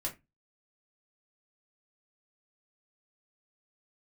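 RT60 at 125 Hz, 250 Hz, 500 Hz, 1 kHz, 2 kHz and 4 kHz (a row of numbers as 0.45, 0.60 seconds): 0.35, 0.30, 0.20, 0.20, 0.20, 0.15 seconds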